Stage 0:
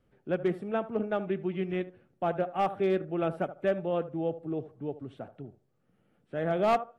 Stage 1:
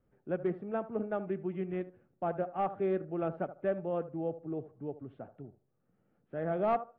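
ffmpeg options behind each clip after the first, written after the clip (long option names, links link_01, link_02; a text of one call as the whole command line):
ffmpeg -i in.wav -af "lowpass=1700,volume=-4dB" out.wav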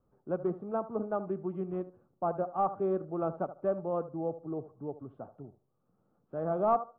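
ffmpeg -i in.wav -af "highshelf=frequency=1500:width_type=q:width=3:gain=-9" out.wav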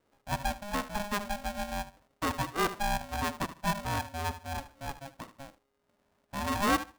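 ffmpeg -i in.wav -af "aeval=exprs='val(0)*sgn(sin(2*PI*410*n/s))':channel_layout=same" out.wav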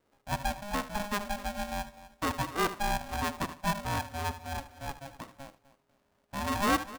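ffmpeg -i in.wav -af "aecho=1:1:253|506|759:0.141|0.0424|0.0127" out.wav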